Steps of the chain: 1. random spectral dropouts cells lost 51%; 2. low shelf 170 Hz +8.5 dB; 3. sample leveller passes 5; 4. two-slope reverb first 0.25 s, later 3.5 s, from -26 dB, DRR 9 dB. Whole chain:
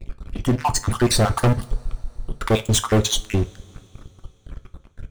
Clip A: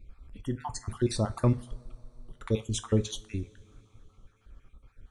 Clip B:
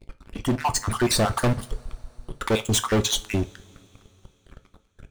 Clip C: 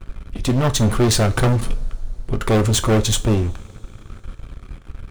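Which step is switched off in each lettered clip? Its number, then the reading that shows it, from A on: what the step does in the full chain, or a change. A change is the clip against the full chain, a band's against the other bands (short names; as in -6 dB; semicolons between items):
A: 3, crest factor change +6.5 dB; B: 2, 125 Hz band -3.5 dB; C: 1, 1 kHz band -3.0 dB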